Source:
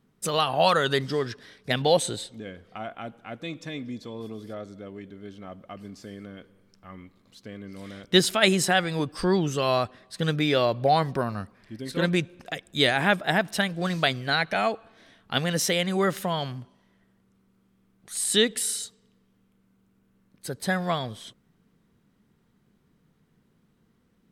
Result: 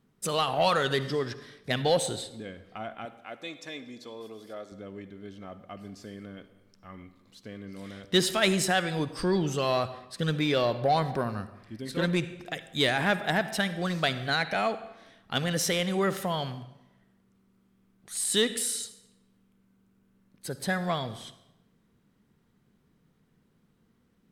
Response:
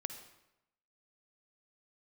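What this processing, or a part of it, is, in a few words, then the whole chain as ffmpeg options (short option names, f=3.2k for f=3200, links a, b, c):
saturated reverb return: -filter_complex "[0:a]asettb=1/sr,asplit=3[a][b][c];[a]atrim=end=3.054[d];[b]atrim=start=3.05:end=4.72,asetpts=PTS-STARTPTS,afade=t=in:d=0.004:c=qsin,afade=t=out:st=1.666:d=0.004:c=qsin,bass=f=250:g=-15,treble=f=4k:g=2[e];[c]atrim=start=4.716[f];[d][e]acrossfade=d=0.004:c1=hsin:c2=qsin[g];[g][f]acrossfade=d=0.004:c1=qsin:c2=hsin,asplit=2[h][i];[1:a]atrim=start_sample=2205[j];[i][j]afir=irnorm=-1:irlink=0,asoftclip=type=tanh:threshold=-20dB,volume=2dB[k];[h][k]amix=inputs=2:normalize=0,volume=-8dB"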